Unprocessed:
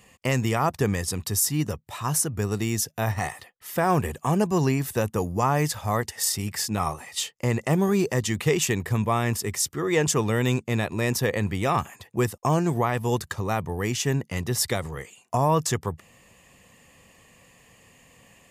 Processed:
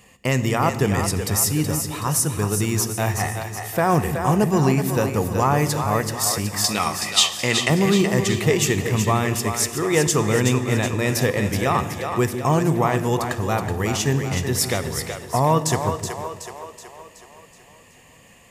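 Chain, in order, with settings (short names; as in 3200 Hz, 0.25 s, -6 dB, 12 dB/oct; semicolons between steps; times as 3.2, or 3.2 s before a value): 6.64–7.7 weighting filter D; split-band echo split 360 Hz, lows 0.157 s, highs 0.374 s, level -7 dB; reverb RT60 1.6 s, pre-delay 17 ms, DRR 12.5 dB; gain +3 dB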